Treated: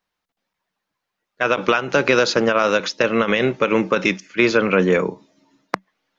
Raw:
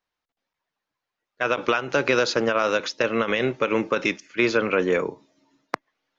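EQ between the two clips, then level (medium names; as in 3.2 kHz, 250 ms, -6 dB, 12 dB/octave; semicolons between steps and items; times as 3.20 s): peaking EQ 190 Hz +10.5 dB 0.2 oct; +4.5 dB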